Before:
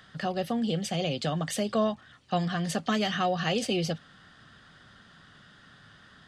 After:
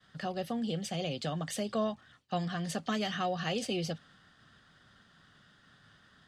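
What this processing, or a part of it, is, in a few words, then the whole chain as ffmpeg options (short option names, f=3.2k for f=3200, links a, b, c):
exciter from parts: -filter_complex "[0:a]asplit=2[a][b];[b]highpass=3.3k,asoftclip=type=tanh:threshold=-37dB,volume=-13.5dB[c];[a][c]amix=inputs=2:normalize=0,agate=range=-33dB:threshold=-52dB:ratio=3:detection=peak,volume=-5.5dB"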